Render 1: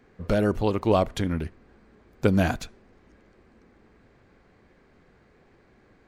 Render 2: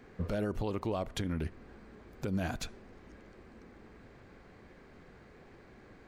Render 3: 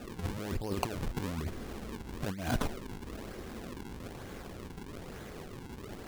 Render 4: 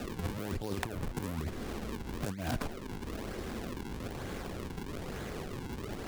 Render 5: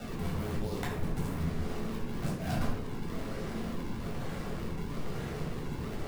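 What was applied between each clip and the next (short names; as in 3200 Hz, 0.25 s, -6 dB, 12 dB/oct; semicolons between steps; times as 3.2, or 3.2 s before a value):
compressor 6:1, threshold -31 dBFS, peak gain reduction 15 dB; limiter -28 dBFS, peak gain reduction 9 dB; gain +3 dB
negative-ratio compressor -38 dBFS, ratio -0.5; decimation with a swept rate 41×, swing 160% 1.1 Hz; gain +6 dB
self-modulated delay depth 0.2 ms; three-band squash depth 70%
shoebox room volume 1000 m³, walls furnished, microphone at 7.1 m; gain -7.5 dB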